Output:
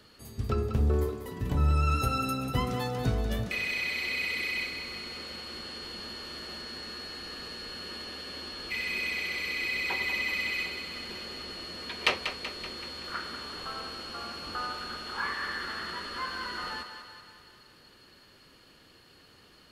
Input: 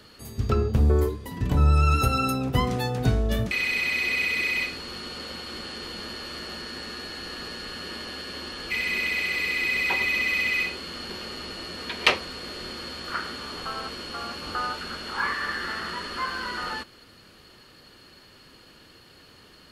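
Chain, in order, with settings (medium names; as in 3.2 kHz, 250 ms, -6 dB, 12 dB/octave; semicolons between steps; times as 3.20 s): thinning echo 190 ms, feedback 59%, high-pass 290 Hz, level -8.5 dB; trim -6 dB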